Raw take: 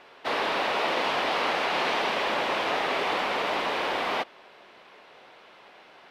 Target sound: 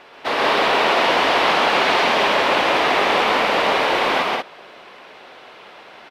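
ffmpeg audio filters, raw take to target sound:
ffmpeg -i in.wav -af "aecho=1:1:131.2|186.6:0.794|0.708,volume=6.5dB" out.wav

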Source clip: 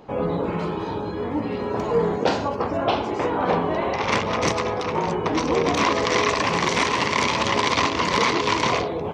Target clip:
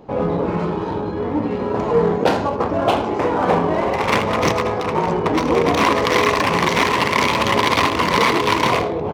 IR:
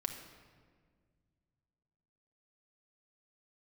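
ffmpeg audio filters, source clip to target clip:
-filter_complex "[0:a]aecho=1:1:81:0.2,asplit=2[link_01][link_02];[link_02]adynamicsmooth=sensitivity=4.5:basefreq=770,volume=1dB[link_03];[link_01][link_03]amix=inputs=2:normalize=0,volume=-2dB"

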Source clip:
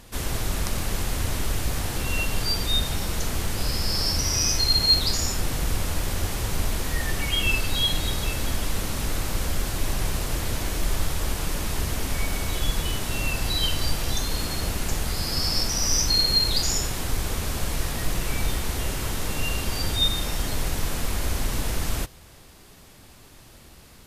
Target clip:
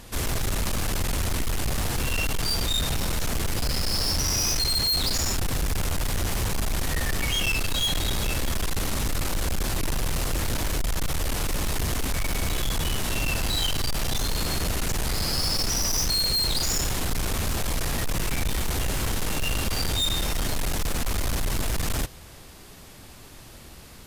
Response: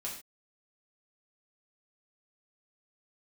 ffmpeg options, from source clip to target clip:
-af "volume=25.5dB,asoftclip=hard,volume=-25.5dB,volume=3.5dB"

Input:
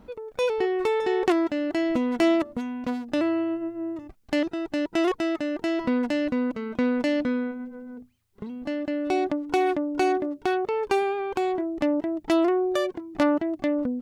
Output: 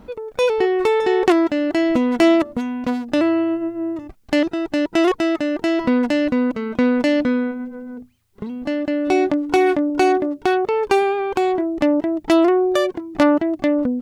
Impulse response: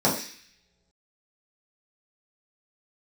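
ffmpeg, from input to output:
-filter_complex "[0:a]asettb=1/sr,asplit=3[link_01][link_02][link_03];[link_01]atrim=end=9.064[link_04];[link_02]atrim=start=9.06:end=9.9,asetpts=PTS-STARTPTS,afade=type=in:duration=0.004:curve=qsin,afade=type=out:start_time=0.836:duration=0.004:curve=qsin,asplit=2[link_05][link_06];[link_06]adelay=21,volume=-10dB[link_07];[link_05][link_07]amix=inputs=2:normalize=0,atrim=end_sample=37044[link_08];[link_03]atrim=start=9.896[link_09];[link_04][link_08]acrossfade=duration=0.004:curve1=hsin:curve2=qsin[link_10];[link_10][link_09]acrossfade=duration=0.004:curve1=qsin:curve2=hsin,volume=7dB"

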